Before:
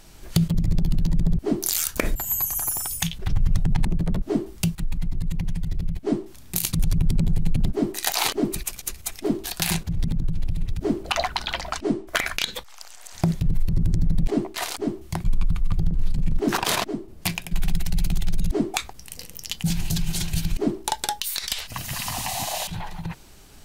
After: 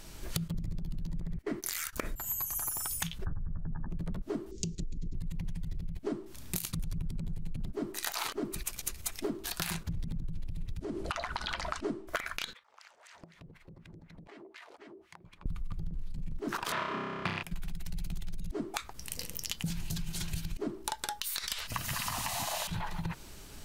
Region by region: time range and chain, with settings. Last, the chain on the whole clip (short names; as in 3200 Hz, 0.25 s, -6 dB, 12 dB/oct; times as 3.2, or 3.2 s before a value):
1.21–1.93 gate -31 dBFS, range -18 dB + bell 2000 Hz +12.5 dB 0.63 oct
3.25–3.9 brick-wall FIR low-pass 1800 Hz + doubler 13 ms -8 dB
4.51–5.14 EQ curve 170 Hz 0 dB, 440 Hz +11 dB, 780 Hz -29 dB, 6800 Hz +6 dB, 11000 Hz -28 dB + compressor 2:1, threshold -26 dBFS
10.8–11.86 LPF 11000 Hz 24 dB/oct + compressor, threshold -27 dBFS
12.53–15.46 wah 4 Hz 410–2300 Hz, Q 2 + compressor 12:1, threshold -47 dBFS
16.72–17.43 half-waves squared off + Chebyshev band-pass 130–2800 Hz + flutter echo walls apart 5.3 m, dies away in 0.88 s
whole clip: notch 760 Hz, Q 12; dynamic EQ 1300 Hz, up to +8 dB, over -46 dBFS, Q 1.7; compressor 16:1, threshold -31 dBFS